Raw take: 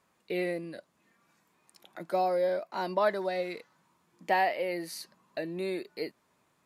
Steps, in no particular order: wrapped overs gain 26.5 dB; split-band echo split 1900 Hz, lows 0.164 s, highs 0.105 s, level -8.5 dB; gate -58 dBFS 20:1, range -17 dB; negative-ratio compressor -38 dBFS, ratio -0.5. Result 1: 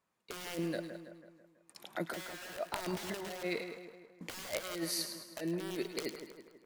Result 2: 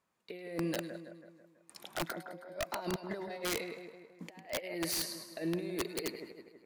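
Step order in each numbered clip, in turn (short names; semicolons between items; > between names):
wrapped overs > negative-ratio compressor > gate > split-band echo; negative-ratio compressor > gate > split-band echo > wrapped overs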